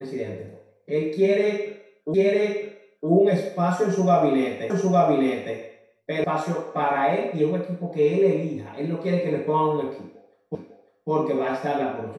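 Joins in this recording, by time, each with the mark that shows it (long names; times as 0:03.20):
0:02.14: the same again, the last 0.96 s
0:04.70: the same again, the last 0.86 s
0:06.24: cut off before it has died away
0:10.55: the same again, the last 0.55 s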